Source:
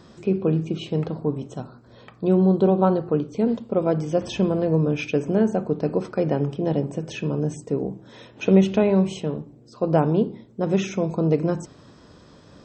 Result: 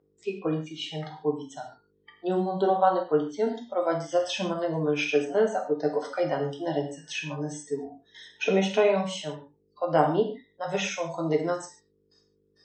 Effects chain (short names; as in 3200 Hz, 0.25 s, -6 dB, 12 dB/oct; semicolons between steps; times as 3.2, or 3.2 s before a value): gate with hold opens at -37 dBFS; spectral noise reduction 25 dB; buzz 50 Hz, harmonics 10, -57 dBFS -5 dB/oct; weighting filter A; non-linear reverb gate 0.17 s falling, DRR 1.5 dB